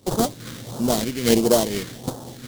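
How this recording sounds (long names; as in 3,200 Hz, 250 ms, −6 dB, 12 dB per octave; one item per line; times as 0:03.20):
aliases and images of a low sample rate 2,600 Hz, jitter 20%
phaser sweep stages 2, 1.5 Hz, lowest notch 760–2,000 Hz
amplitude modulation by smooth noise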